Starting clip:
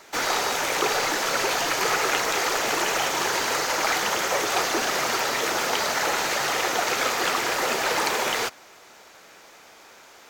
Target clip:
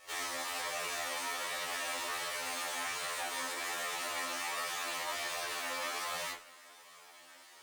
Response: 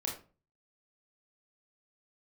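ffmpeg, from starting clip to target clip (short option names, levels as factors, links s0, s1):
-filter_complex "[0:a]aeval=exprs='max(val(0),0)':c=same[s0];[1:a]atrim=start_sample=2205,asetrate=32193,aresample=44100[s1];[s0][s1]afir=irnorm=-1:irlink=0,acompressor=threshold=0.0447:ratio=12,highpass=f=340:p=1,asetrate=59535,aresample=44100,flanger=delay=1.5:depth=2.4:regen=-23:speed=1.3:shape=triangular,afftfilt=real='re*2*eq(mod(b,4),0)':imag='im*2*eq(mod(b,4),0)':win_size=2048:overlap=0.75"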